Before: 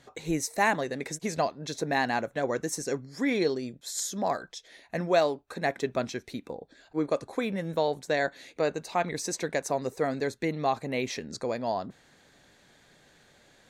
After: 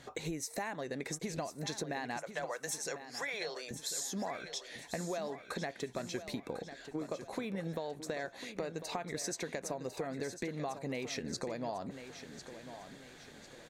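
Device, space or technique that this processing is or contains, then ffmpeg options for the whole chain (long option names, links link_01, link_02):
serial compression, peaks first: -filter_complex "[0:a]asettb=1/sr,asplit=3[link_01][link_02][link_03];[link_01]atrim=end=2.174[link_04];[link_02]atrim=start=2.17:end=3.71,asetpts=PTS-STARTPTS,afade=type=in:duration=0.004:curve=qsin,afade=type=out:start_time=1.536:duration=0.004:curve=qsin,highpass=frequency=590:width=0.5412,highpass=frequency=590:width=1.3066[link_05];[link_03]atrim=start=3.706[link_06];[link_04][link_05]acrossfade=duration=0.004:curve1=hsin:curve2=qsin[link_07];[link_07][link_06]acrossfade=duration=0.004:curve1=qsin:curve2=hsin,acompressor=threshold=-35dB:ratio=4,acompressor=threshold=-40dB:ratio=3,aecho=1:1:1049|2098|3147|4196:0.282|0.116|0.0474|0.0194,volume=3.5dB"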